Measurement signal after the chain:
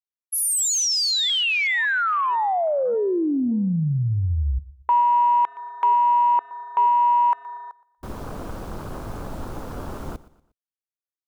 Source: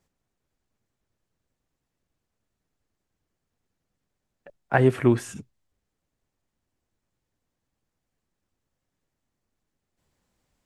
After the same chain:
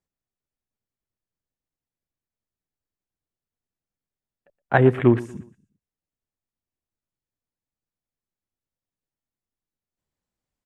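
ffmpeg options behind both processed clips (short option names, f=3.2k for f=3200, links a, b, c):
-af "afwtdn=0.0178,aecho=1:1:119|238|357:0.112|0.0438|0.0171,volume=3dB"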